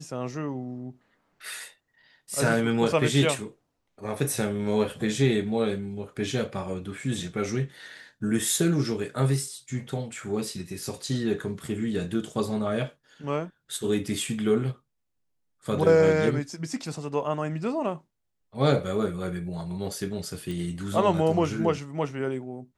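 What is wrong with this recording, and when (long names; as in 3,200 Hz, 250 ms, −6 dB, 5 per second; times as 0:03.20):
0:20.51: click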